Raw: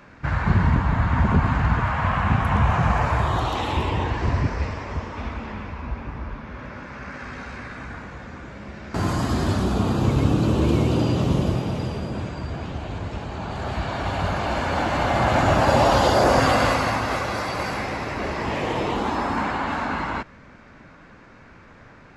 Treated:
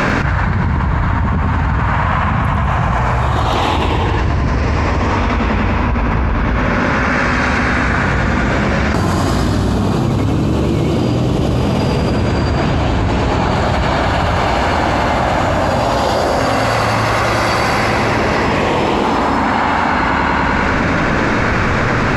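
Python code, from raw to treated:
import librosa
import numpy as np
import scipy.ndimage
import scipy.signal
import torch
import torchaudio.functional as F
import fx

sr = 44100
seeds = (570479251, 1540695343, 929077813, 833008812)

p1 = x + fx.echo_feedback(x, sr, ms=99, feedback_pct=58, wet_db=-5.0, dry=0)
p2 = fx.env_flatten(p1, sr, amount_pct=100)
y = F.gain(torch.from_numpy(p2), -2.0).numpy()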